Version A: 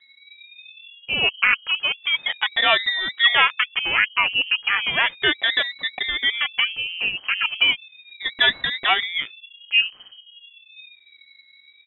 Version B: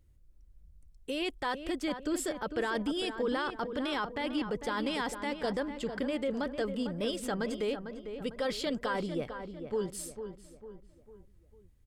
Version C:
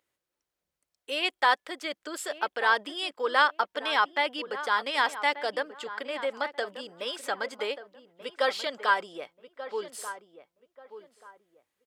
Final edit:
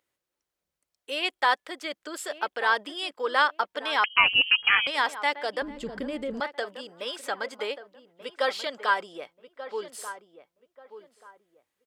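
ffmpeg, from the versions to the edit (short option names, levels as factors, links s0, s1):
-filter_complex "[2:a]asplit=3[s0][s1][s2];[s0]atrim=end=4.042[s3];[0:a]atrim=start=4.038:end=4.872[s4];[s1]atrim=start=4.868:end=5.622[s5];[1:a]atrim=start=5.618:end=6.402[s6];[s2]atrim=start=6.398[s7];[s3][s4]acrossfade=d=0.004:c1=hsin:c2=hsin[s8];[s8][s5]acrossfade=d=0.004:c1=hsin:c2=hsin[s9];[s9][s6]acrossfade=d=0.004:c1=hsin:c2=hsin[s10];[s10][s7]acrossfade=d=0.004:c1=hsin:c2=hsin"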